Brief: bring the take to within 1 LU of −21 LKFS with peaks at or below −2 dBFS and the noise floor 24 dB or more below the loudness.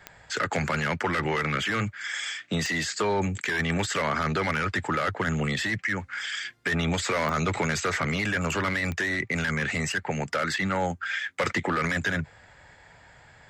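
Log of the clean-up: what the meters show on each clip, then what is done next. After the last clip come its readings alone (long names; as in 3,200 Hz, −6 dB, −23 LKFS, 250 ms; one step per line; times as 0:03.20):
number of clicks 4; integrated loudness −27.5 LKFS; sample peak −14.0 dBFS; target loudness −21.0 LKFS
→ click removal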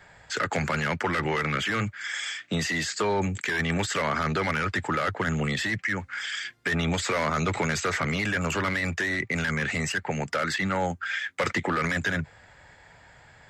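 number of clicks 0; integrated loudness −27.5 LKFS; sample peak −14.0 dBFS; target loudness −21.0 LKFS
→ level +6.5 dB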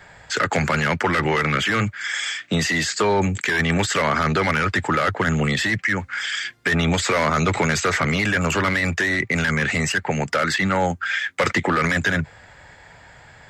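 integrated loudness −21.0 LKFS; sample peak −7.5 dBFS; background noise floor −47 dBFS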